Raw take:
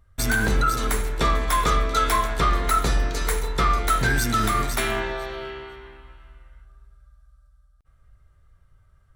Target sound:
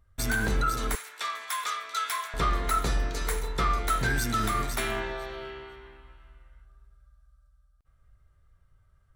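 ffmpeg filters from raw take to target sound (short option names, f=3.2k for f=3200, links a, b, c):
-filter_complex "[0:a]asettb=1/sr,asplit=3[a][b][c];[a]atrim=end=0.954[d];[b]atrim=start=0.95:end=2.34,asetpts=PTS-STARTPTS,afade=t=in:d=0.004:c=qsin,afade=t=out:st=1.386:d=0.004:c=qsin,highpass=1.3k[e];[c]atrim=start=2.336[f];[d][e]acrossfade=d=0.004:c1=hsin:c2=qsin[g];[g][f]acrossfade=d=0.004:c1=qsin:c2=hsin,volume=-5.5dB"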